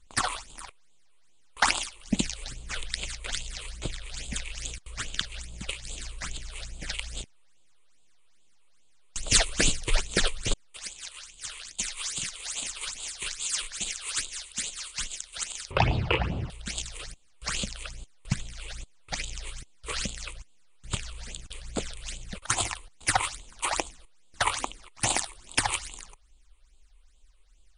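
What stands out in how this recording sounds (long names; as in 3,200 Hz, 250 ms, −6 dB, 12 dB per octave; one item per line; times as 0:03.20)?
a quantiser's noise floor 12 bits, dither triangular
phaser sweep stages 8, 2.4 Hz, lowest notch 200–1,800 Hz
MP3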